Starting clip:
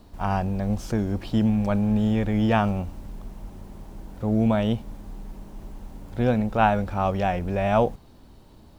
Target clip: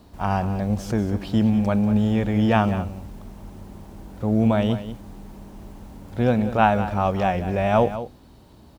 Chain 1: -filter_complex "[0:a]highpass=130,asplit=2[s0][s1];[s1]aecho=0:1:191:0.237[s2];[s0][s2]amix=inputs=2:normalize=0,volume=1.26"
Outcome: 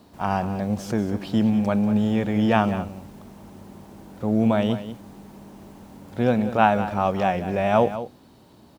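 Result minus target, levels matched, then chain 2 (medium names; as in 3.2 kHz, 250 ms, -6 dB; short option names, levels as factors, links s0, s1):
125 Hz band -3.0 dB
-filter_complex "[0:a]highpass=47,asplit=2[s0][s1];[s1]aecho=0:1:191:0.237[s2];[s0][s2]amix=inputs=2:normalize=0,volume=1.26"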